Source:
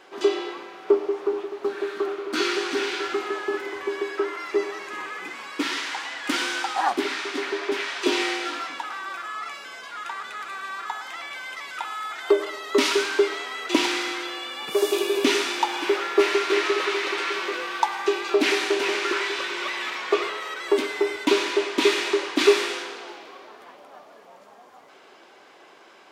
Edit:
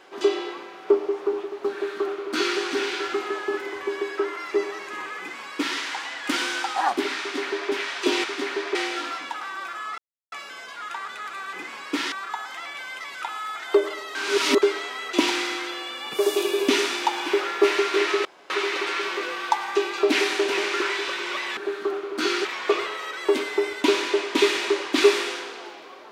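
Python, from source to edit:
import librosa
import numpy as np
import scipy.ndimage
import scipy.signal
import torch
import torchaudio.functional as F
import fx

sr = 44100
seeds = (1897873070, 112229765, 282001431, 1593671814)

y = fx.edit(x, sr, fx.duplicate(start_s=1.72, length_s=0.88, to_s=19.88),
    fx.duplicate(start_s=5.19, length_s=0.59, to_s=10.68),
    fx.duplicate(start_s=7.2, length_s=0.51, to_s=8.24),
    fx.insert_silence(at_s=9.47, length_s=0.34),
    fx.reverse_span(start_s=12.71, length_s=0.47),
    fx.insert_room_tone(at_s=16.81, length_s=0.25), tone=tone)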